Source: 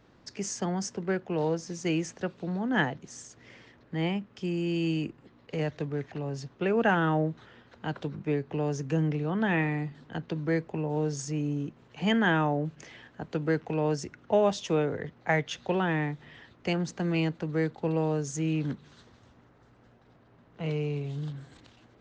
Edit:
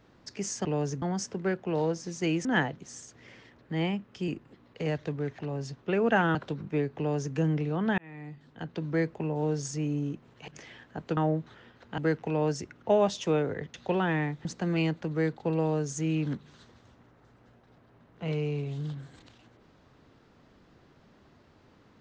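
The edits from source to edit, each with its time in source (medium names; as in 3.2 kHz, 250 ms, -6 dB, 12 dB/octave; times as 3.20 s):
2.08–2.67 s: delete
4.50–5.01 s: delete
7.08–7.89 s: move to 13.41 s
8.52–8.89 s: copy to 0.65 s
9.52–10.47 s: fade in
12.02–12.72 s: delete
15.17–15.54 s: delete
16.25–16.83 s: delete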